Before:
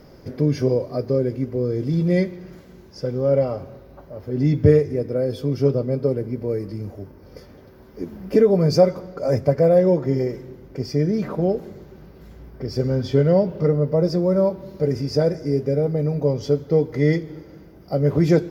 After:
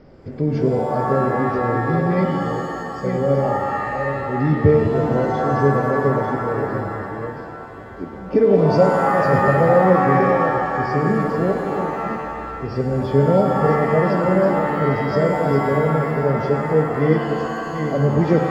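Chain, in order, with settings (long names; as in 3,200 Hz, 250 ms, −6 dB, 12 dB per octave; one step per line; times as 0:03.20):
delay that plays each chunk backwards 529 ms, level −6.5 dB
high-frequency loss of the air 230 metres
reverb with rising layers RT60 2.1 s, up +7 semitones, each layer −2 dB, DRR 4.5 dB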